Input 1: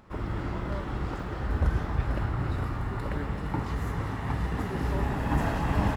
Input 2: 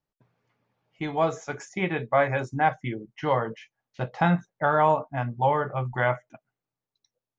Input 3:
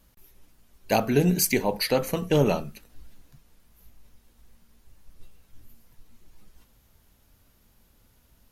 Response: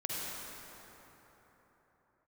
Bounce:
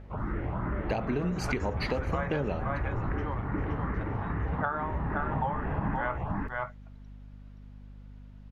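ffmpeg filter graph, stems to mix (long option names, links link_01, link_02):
-filter_complex "[0:a]lowpass=frequency=2200:width=0.5412,lowpass=frequency=2200:width=1.3066,asplit=2[link_01][link_02];[link_02]afreqshift=2.5[link_03];[link_01][link_03]amix=inputs=2:normalize=1,volume=1.5dB,asplit=3[link_04][link_05][link_06];[link_05]volume=-11dB[link_07];[link_06]volume=-4dB[link_08];[1:a]equalizer=frequency=1200:width_type=o:width=1.3:gain=11.5,aeval=exprs='val(0)*pow(10,-19*(0.5-0.5*cos(2*PI*1.3*n/s))/20)':channel_layout=same,volume=-8dB,asplit=3[link_09][link_10][link_11];[link_10]volume=-5.5dB[link_12];[2:a]lowpass=2600,volume=2dB,asplit=2[link_13][link_14];[link_14]volume=-24dB[link_15];[link_11]apad=whole_len=262897[link_16];[link_04][link_16]sidechaincompress=threshold=-44dB:ratio=8:attack=16:release=315[link_17];[link_17][link_13]amix=inputs=2:normalize=0,aeval=exprs='val(0)+0.00501*(sin(2*PI*50*n/s)+sin(2*PI*2*50*n/s)/2+sin(2*PI*3*50*n/s)/3+sin(2*PI*4*50*n/s)/4+sin(2*PI*5*50*n/s)/5)':channel_layout=same,acompressor=threshold=-25dB:ratio=2.5,volume=0dB[link_18];[3:a]atrim=start_sample=2205[link_19];[link_07][link_19]afir=irnorm=-1:irlink=0[link_20];[link_08][link_12][link_15]amix=inputs=3:normalize=0,aecho=0:1:523:1[link_21];[link_09][link_18][link_20][link_21]amix=inputs=4:normalize=0,acompressor=threshold=-26dB:ratio=6"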